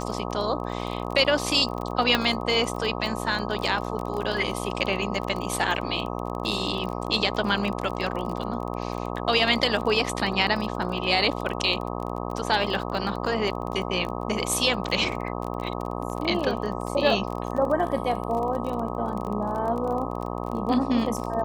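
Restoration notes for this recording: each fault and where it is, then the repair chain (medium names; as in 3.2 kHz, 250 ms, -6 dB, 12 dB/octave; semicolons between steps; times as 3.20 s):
buzz 60 Hz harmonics 21 -31 dBFS
crackle 27 per s -30 dBFS
2.15 s: pop -7 dBFS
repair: de-click; de-hum 60 Hz, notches 21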